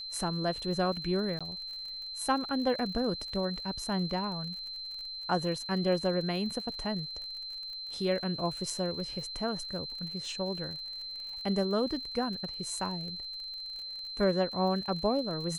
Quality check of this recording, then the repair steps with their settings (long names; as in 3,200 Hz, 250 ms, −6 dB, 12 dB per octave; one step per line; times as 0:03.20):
surface crackle 40 per second −40 dBFS
whistle 4,100 Hz −38 dBFS
0:01.39–0:01.41: drop-out 16 ms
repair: click removal
notch filter 4,100 Hz, Q 30
repair the gap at 0:01.39, 16 ms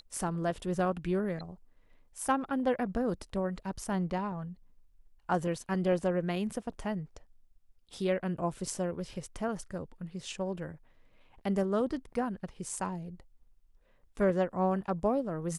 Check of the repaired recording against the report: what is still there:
none of them is left